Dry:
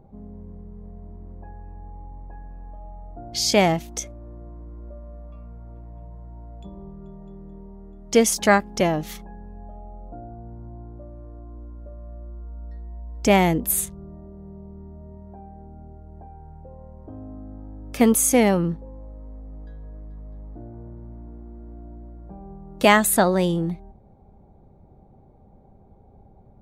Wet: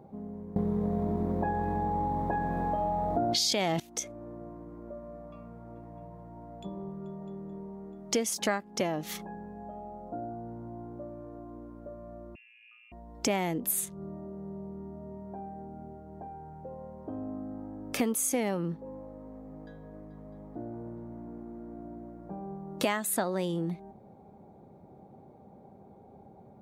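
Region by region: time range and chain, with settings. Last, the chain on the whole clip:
0:00.56–0:03.80: parametric band 3,700 Hz +8 dB 0.48 octaves + envelope flattener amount 100%
0:12.35–0:12.92: four-pole ladder high-pass 330 Hz, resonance 35% + voice inversion scrambler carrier 3,100 Hz
whole clip: high-pass filter 170 Hz 12 dB per octave; downward compressor 4 to 1, threshold −32 dBFS; level +3 dB

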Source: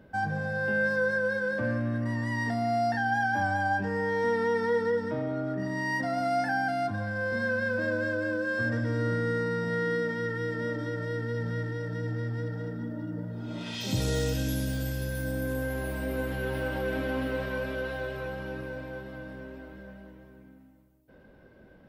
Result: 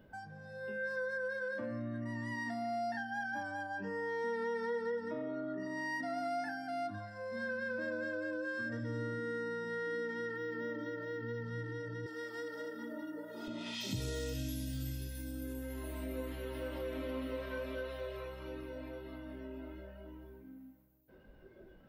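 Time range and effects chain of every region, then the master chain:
0:10.36–0:11.45: high-shelf EQ 9,400 Hz −9 dB + linearly interpolated sample-rate reduction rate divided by 2×
0:12.06–0:13.48: high-pass filter 380 Hz + high-shelf EQ 4,300 Hz +9.5 dB
whole clip: downward compressor 2.5 to 1, threshold −48 dBFS; noise reduction from a noise print of the clip's start 12 dB; level +5.5 dB

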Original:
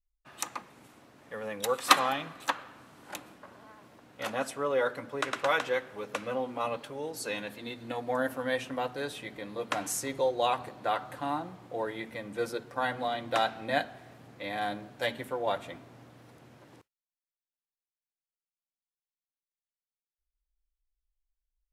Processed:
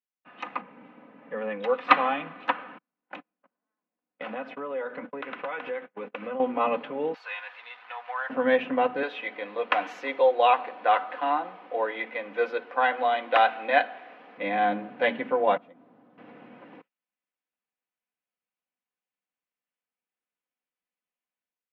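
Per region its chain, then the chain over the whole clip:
0:00.61–0:01.37: low-pass filter 2,200 Hz 6 dB per octave + notch comb filter 360 Hz
0:02.78–0:06.40: noise gate −45 dBFS, range −42 dB + downward compressor 4 to 1, threshold −40 dBFS
0:07.14–0:08.30: converter with a step at zero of −43 dBFS + high-pass filter 990 Hz 24 dB per octave + dynamic equaliser 2,400 Hz, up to −6 dB, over −49 dBFS, Q 0.71
0:09.03–0:14.38: high-pass filter 470 Hz + high-shelf EQ 4,700 Hz +10 dB
0:15.57–0:16.18: noise gate −41 dBFS, range −10 dB + parametric band 2,400 Hz −10.5 dB 1.1 octaves + downward compressor 4 to 1, threshold −57 dBFS
whole clip: elliptic band-pass filter 170–2,700 Hz, stop band 50 dB; comb filter 4 ms, depth 45%; automatic gain control gain up to 7 dB

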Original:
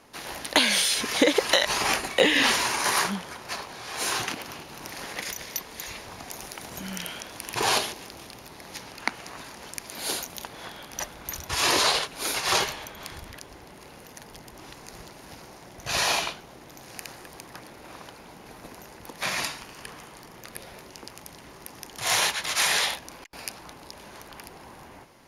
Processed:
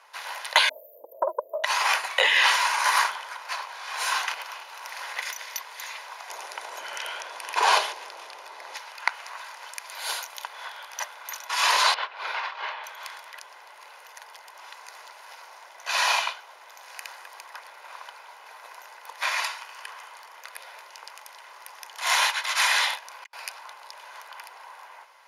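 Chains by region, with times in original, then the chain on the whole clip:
0:00.69–0:01.64: linear-phase brick-wall band-stop 620–13,000 Hz + frequency shifter +61 Hz + highs frequency-modulated by the lows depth 0.4 ms
0:06.29–0:08.77: low-pass filter 11,000 Hz + parametric band 320 Hz +12 dB 1.9 octaves
0:11.94–0:12.84: compressor whose output falls as the input rises −28 dBFS, ratio −0.5 + high-frequency loss of the air 320 metres
whole clip: high-pass filter 780 Hz 24 dB per octave; high-shelf EQ 3,800 Hz −10.5 dB; comb filter 2 ms, depth 32%; level +5 dB

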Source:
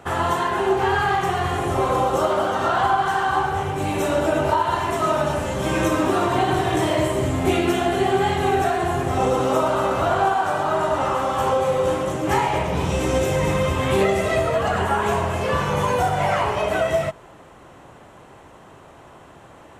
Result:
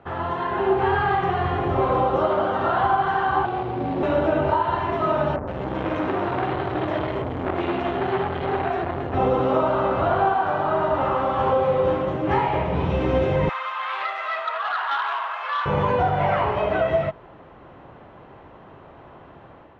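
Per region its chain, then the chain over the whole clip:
0:03.45–0:04.03: running median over 25 samples + high-pass filter 140 Hz 24 dB per octave + frequency shifter −27 Hz
0:05.36–0:09.14: multiband delay without the direct sound lows, highs 110 ms, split 1,200 Hz + saturating transformer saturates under 1,400 Hz
0:13.49–0:15.66: inverse Chebyshev high-pass filter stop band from 200 Hz, stop band 70 dB + parametric band 1,300 Hz +7 dB 0.58 octaves + saturating transformer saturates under 2,900 Hz
whole clip: low-pass filter 4,000 Hz 24 dB per octave; high-shelf EQ 2,700 Hz −10 dB; automatic gain control gain up to 6 dB; level −5 dB

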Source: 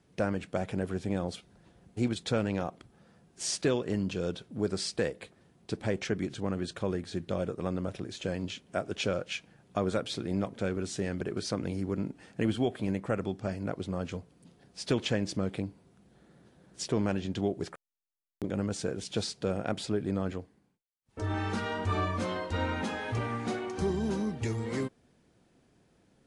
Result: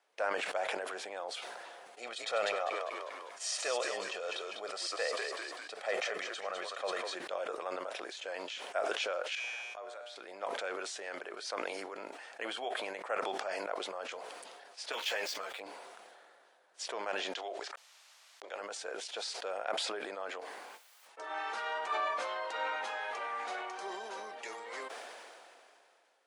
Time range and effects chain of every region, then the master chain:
0:01.98–0:07.15: comb filter 1.6 ms, depth 53% + echo with shifted repeats 199 ms, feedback 42%, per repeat −71 Hz, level −7 dB
0:09.35–0:10.16: low-shelf EQ 230 Hz −6 dB + tuned comb filter 120 Hz, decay 1.9 s, mix 80%
0:14.92–0:15.60: running median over 5 samples + spectral tilt +3 dB per octave + string-ensemble chorus
0:17.34–0:18.61: band-pass filter 400–5,400 Hz + high-shelf EQ 4,100 Hz +11.5 dB
whole clip: high-pass filter 610 Hz 24 dB per octave; high-shelf EQ 4,600 Hz −8 dB; level that may fall only so fast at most 23 dB per second

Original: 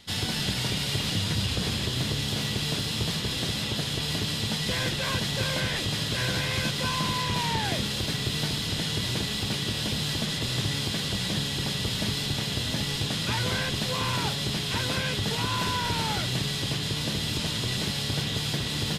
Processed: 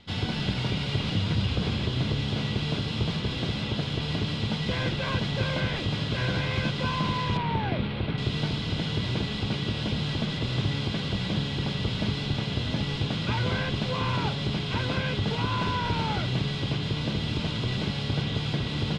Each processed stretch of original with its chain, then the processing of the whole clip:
0:07.37–0:08.18: running median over 5 samples + Butterworth low-pass 11,000 Hz 96 dB per octave + linearly interpolated sample-rate reduction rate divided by 6×
whole clip: low-pass filter 3,100 Hz 12 dB per octave; low-shelf EQ 430 Hz +3 dB; notch filter 1,800 Hz, Q 8.3

